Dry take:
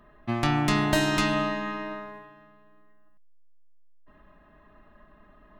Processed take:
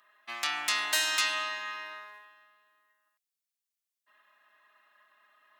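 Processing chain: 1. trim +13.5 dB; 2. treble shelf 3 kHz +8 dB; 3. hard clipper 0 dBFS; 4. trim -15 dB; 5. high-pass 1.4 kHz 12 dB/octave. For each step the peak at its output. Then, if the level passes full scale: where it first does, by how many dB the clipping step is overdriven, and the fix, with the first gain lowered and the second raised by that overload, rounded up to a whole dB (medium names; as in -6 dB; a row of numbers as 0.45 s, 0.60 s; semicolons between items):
+4.5 dBFS, +6.0 dBFS, 0.0 dBFS, -15.0 dBFS, -11.5 dBFS; step 1, 6.0 dB; step 1 +7.5 dB, step 4 -9 dB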